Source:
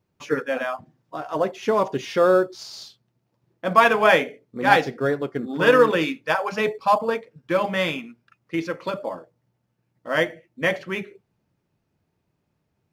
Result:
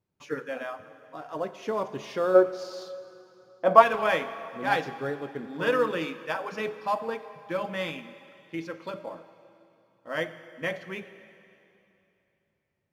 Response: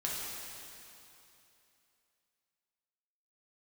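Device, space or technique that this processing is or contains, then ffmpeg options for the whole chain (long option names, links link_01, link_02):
saturated reverb return: -filter_complex "[0:a]asplit=3[link_01][link_02][link_03];[link_01]afade=type=out:start_time=2.34:duration=0.02[link_04];[link_02]equalizer=frequency=650:width=0.63:gain=14,afade=type=in:start_time=2.34:duration=0.02,afade=type=out:start_time=3.81:duration=0.02[link_05];[link_03]afade=type=in:start_time=3.81:duration=0.02[link_06];[link_04][link_05][link_06]amix=inputs=3:normalize=0,asplit=2[link_07][link_08];[1:a]atrim=start_sample=2205[link_09];[link_08][link_09]afir=irnorm=-1:irlink=0,asoftclip=type=tanh:threshold=-4dB,volume=-13.5dB[link_10];[link_07][link_10]amix=inputs=2:normalize=0,volume=-10.5dB"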